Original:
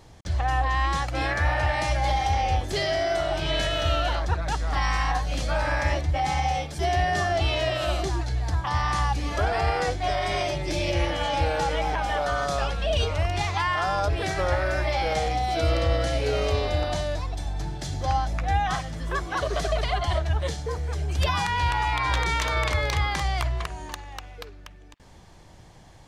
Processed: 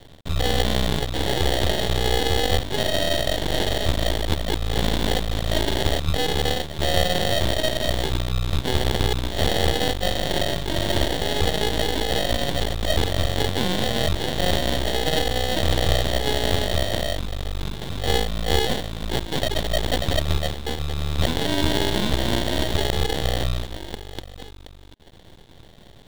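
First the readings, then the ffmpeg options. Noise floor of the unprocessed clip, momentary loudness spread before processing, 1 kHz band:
−48 dBFS, 6 LU, −4.0 dB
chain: -af "acrusher=samples=35:mix=1:aa=0.000001,equalizer=frequency=3600:width_type=o:width=0.44:gain=14.5,aeval=exprs='max(val(0),0)':channel_layout=same,volume=5.5dB"

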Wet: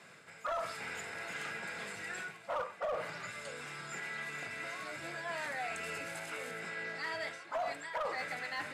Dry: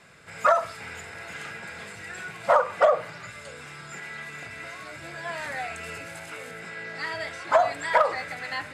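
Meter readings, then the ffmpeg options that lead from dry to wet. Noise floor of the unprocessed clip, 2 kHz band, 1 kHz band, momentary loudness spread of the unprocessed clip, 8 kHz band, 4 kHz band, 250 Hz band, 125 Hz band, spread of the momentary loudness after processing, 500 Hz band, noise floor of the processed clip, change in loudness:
−43 dBFS, −7.0 dB, −14.0 dB, 16 LU, −4.5 dB, −6.0 dB, −6.0 dB, −8.5 dB, 5 LU, −14.5 dB, −55 dBFS, −12.0 dB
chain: -af "highpass=160,areverse,acompressor=threshold=-33dB:ratio=4,areverse,asoftclip=type=hard:threshold=-28dB,volume=-2.5dB"

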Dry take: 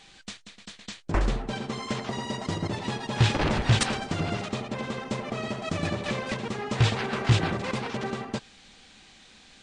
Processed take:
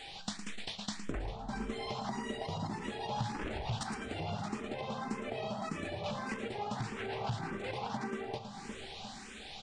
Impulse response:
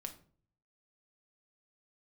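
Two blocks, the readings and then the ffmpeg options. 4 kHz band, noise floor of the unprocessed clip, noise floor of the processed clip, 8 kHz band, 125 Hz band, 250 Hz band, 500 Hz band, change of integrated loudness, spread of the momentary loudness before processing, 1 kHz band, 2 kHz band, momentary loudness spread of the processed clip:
−10.0 dB, −54 dBFS, −48 dBFS, −10.5 dB, −14.5 dB, −9.0 dB, −8.0 dB, −11.0 dB, 13 LU, −6.0 dB, −10.5 dB, 5 LU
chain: -filter_complex "[0:a]acontrast=82,equalizer=frequency=810:width_type=o:width=0.44:gain=7.5,bandreject=frequency=6300:width=23,asplit=2[link_01][link_02];[link_02]adelay=354,lowpass=frequency=2000:poles=1,volume=-18.5dB,asplit=2[link_03][link_04];[link_04]adelay=354,lowpass=frequency=2000:poles=1,volume=0.48,asplit=2[link_05][link_06];[link_06]adelay=354,lowpass=frequency=2000:poles=1,volume=0.48,asplit=2[link_07][link_08];[link_08]adelay=354,lowpass=frequency=2000:poles=1,volume=0.48[link_09];[link_01][link_03][link_05][link_07][link_09]amix=inputs=5:normalize=0,asplit=2[link_10][link_11];[1:a]atrim=start_sample=2205,asetrate=48510,aresample=44100[link_12];[link_11][link_12]afir=irnorm=-1:irlink=0,volume=1.5dB[link_13];[link_10][link_13]amix=inputs=2:normalize=0,acompressor=threshold=-28dB:ratio=12,asplit=2[link_14][link_15];[link_15]aecho=0:1:111:0.335[link_16];[link_14][link_16]amix=inputs=2:normalize=0,asplit=2[link_17][link_18];[link_18]afreqshift=1.7[link_19];[link_17][link_19]amix=inputs=2:normalize=1,volume=-4.5dB"

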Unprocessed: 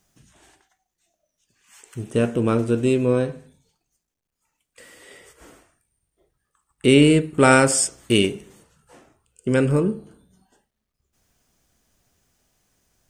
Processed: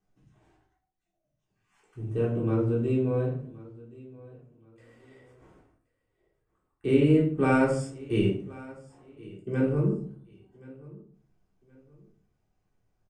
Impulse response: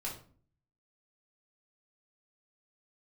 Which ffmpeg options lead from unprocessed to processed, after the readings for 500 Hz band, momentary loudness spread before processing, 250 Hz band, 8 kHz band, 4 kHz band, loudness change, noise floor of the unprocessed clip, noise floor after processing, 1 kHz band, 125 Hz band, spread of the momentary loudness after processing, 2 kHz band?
−7.0 dB, 12 LU, −6.0 dB, below −25 dB, −19.0 dB, −7.5 dB, −81 dBFS, −80 dBFS, −10.0 dB, −3.5 dB, 19 LU, −12.5 dB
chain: -filter_complex "[0:a]lowpass=frequency=1100:poles=1,aecho=1:1:1074|2148:0.0891|0.0258[link_01];[1:a]atrim=start_sample=2205[link_02];[link_01][link_02]afir=irnorm=-1:irlink=0,volume=-8dB"

